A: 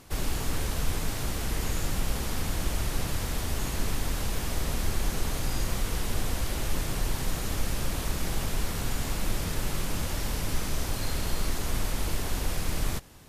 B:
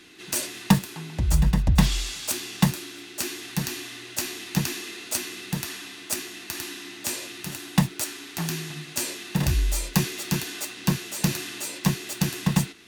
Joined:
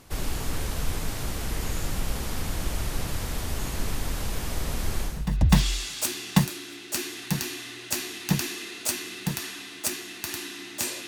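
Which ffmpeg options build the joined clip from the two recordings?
ffmpeg -i cue0.wav -i cue1.wav -filter_complex "[0:a]apad=whole_dur=11.07,atrim=end=11.07,atrim=end=5.39,asetpts=PTS-STARTPTS[link_01];[1:a]atrim=start=1.27:end=7.33,asetpts=PTS-STARTPTS[link_02];[link_01][link_02]acrossfade=duration=0.38:curve1=qua:curve2=qua" out.wav

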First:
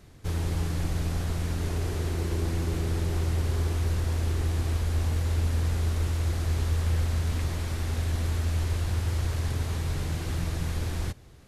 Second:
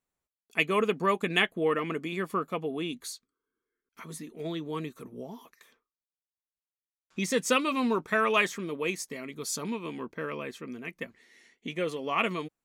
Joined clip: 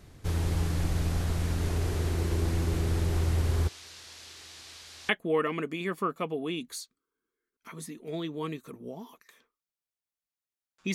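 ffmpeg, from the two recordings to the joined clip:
ffmpeg -i cue0.wav -i cue1.wav -filter_complex "[0:a]asplit=3[link_01][link_02][link_03];[link_01]afade=type=out:start_time=3.67:duration=0.02[link_04];[link_02]bandpass=frequency=4600:width_type=q:width=1.2:csg=0,afade=type=in:start_time=3.67:duration=0.02,afade=type=out:start_time=5.09:duration=0.02[link_05];[link_03]afade=type=in:start_time=5.09:duration=0.02[link_06];[link_04][link_05][link_06]amix=inputs=3:normalize=0,apad=whole_dur=10.94,atrim=end=10.94,atrim=end=5.092[link_07];[1:a]atrim=start=1.408:end=7.26[link_08];[link_07][link_08]acrossfade=duration=0.004:curve1=hsin:curve2=hsin" out.wav

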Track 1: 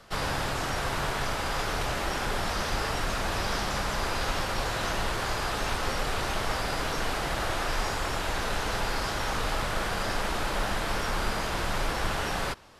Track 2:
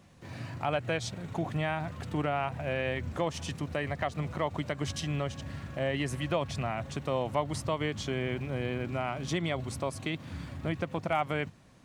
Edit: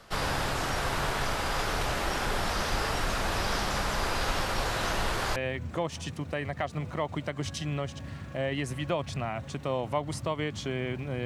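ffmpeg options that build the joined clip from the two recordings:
ffmpeg -i cue0.wav -i cue1.wav -filter_complex "[0:a]apad=whole_dur=11.25,atrim=end=11.25,atrim=end=5.362[link_01];[1:a]atrim=start=2.778:end=8.67[link_02];[link_01][link_02]acrossfade=duration=0.004:curve1=hsin:curve2=hsin" out.wav

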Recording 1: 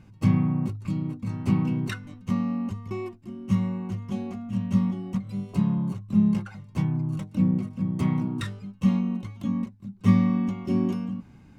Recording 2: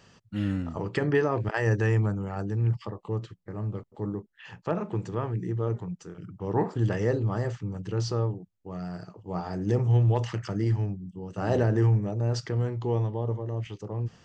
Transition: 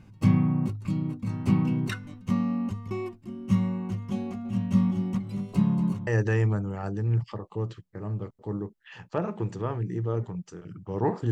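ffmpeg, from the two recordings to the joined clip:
ffmpeg -i cue0.wav -i cue1.wav -filter_complex "[0:a]asplit=3[link_01][link_02][link_03];[link_01]afade=type=out:start_time=4.44:duration=0.02[link_04];[link_02]aecho=1:1:233:0.299,afade=type=in:start_time=4.44:duration=0.02,afade=type=out:start_time=6.07:duration=0.02[link_05];[link_03]afade=type=in:start_time=6.07:duration=0.02[link_06];[link_04][link_05][link_06]amix=inputs=3:normalize=0,apad=whole_dur=11.31,atrim=end=11.31,atrim=end=6.072[link_07];[1:a]atrim=start=1.598:end=6.84[link_08];[link_07][link_08]acrossfade=duration=0.004:curve1=hsin:curve2=hsin" out.wav

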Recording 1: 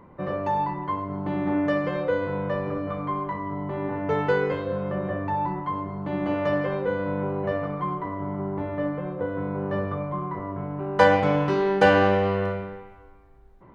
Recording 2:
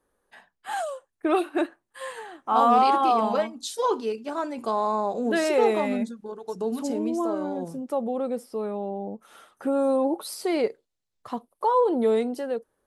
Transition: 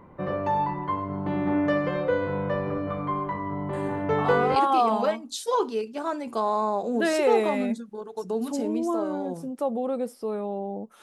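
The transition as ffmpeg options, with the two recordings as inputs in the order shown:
ffmpeg -i cue0.wav -i cue1.wav -filter_complex "[1:a]asplit=2[link_01][link_02];[0:a]apad=whole_dur=11.02,atrim=end=11.02,atrim=end=4.562[link_03];[link_02]atrim=start=2.868:end=9.33[link_04];[link_01]atrim=start=2.04:end=2.87,asetpts=PTS-STARTPTS,volume=-9dB,afade=type=in:duration=0.004:curve=hsin,afade=type=out:start_time=0.826:duration=0.004:curve=hsin,adelay=164493S[link_05];[link_03][link_04]acrossfade=duration=0.004:curve1=hsin:curve2=hsin[link_06];[link_06][link_05]amix=inputs=2:normalize=0" out.wav

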